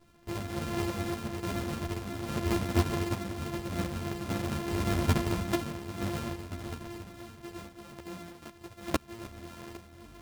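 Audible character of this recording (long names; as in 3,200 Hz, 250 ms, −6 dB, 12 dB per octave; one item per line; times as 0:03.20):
a buzz of ramps at a fixed pitch in blocks of 128 samples
sample-and-hold tremolo
a shimmering, thickened sound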